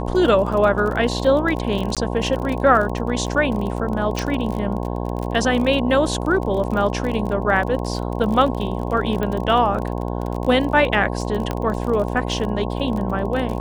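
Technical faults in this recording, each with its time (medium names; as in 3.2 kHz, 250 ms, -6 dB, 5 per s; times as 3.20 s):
buzz 60 Hz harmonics 18 -25 dBFS
crackle 35 per s -26 dBFS
1.95–1.97 s: dropout 17 ms
4.19 s: pop
9.23 s: pop -13 dBFS
11.51 s: pop -10 dBFS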